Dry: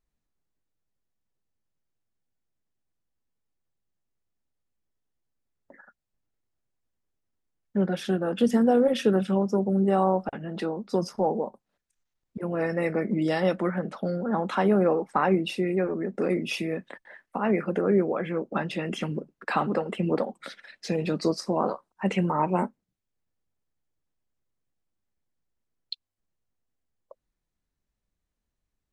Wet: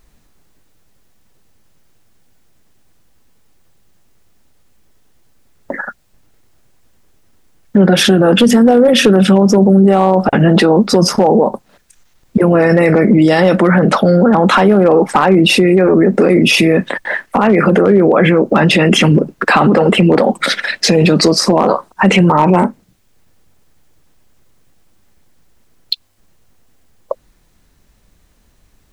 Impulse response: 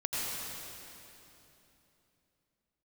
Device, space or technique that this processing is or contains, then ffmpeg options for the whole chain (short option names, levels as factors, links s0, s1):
loud club master: -af "acompressor=threshold=0.0501:ratio=2.5,asoftclip=type=hard:threshold=0.1,alimiter=level_in=33.5:limit=0.891:release=50:level=0:latency=1,volume=0.891"